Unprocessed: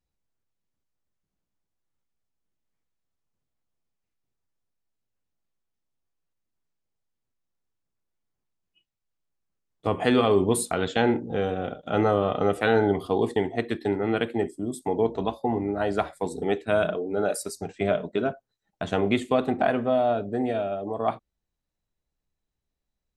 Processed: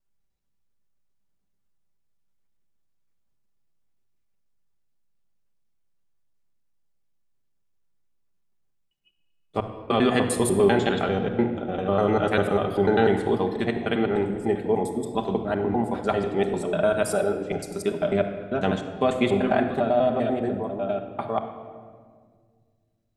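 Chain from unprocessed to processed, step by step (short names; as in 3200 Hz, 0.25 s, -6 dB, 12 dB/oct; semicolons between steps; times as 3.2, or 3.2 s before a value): slices in reverse order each 99 ms, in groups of 4; shoebox room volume 2500 m³, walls mixed, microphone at 1.2 m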